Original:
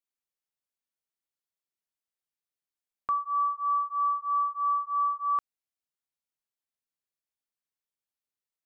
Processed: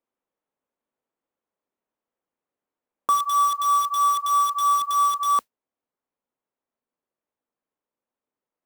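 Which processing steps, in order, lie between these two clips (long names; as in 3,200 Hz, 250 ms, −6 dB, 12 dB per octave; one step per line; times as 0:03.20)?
adaptive Wiener filter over 9 samples
graphic EQ with 10 bands 250 Hz +10 dB, 500 Hz +10 dB, 1,000 Hz +7 dB
noise that follows the level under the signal 33 dB
in parallel at −5.5 dB: wrap-around overflow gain 22.5 dB
on the sum: speech leveller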